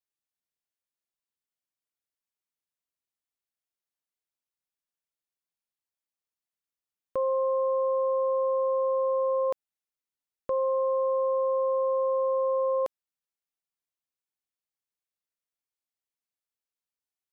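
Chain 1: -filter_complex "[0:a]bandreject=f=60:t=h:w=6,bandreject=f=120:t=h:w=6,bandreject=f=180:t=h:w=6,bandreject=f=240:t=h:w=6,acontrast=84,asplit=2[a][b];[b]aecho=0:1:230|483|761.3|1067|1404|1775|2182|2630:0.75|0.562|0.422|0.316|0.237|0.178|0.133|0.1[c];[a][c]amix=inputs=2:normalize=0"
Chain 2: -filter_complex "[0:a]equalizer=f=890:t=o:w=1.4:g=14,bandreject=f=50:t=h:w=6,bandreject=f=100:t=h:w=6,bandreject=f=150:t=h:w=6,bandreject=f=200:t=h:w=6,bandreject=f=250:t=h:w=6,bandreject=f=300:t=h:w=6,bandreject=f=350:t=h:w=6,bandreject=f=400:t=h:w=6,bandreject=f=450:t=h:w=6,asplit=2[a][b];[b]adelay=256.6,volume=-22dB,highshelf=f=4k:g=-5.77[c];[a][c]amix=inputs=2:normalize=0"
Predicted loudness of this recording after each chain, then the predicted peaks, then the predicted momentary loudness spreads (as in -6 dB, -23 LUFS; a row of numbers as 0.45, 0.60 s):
-19.0, -19.5 LUFS; -11.5, -12.5 dBFS; 15, 5 LU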